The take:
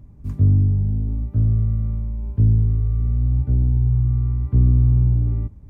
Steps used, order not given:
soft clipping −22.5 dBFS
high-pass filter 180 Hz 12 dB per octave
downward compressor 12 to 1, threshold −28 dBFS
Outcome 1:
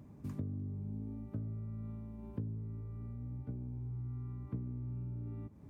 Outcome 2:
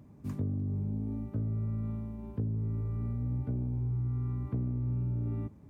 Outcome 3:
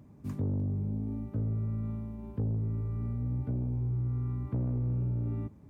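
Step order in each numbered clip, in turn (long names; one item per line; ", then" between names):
downward compressor, then high-pass filter, then soft clipping
high-pass filter, then downward compressor, then soft clipping
high-pass filter, then soft clipping, then downward compressor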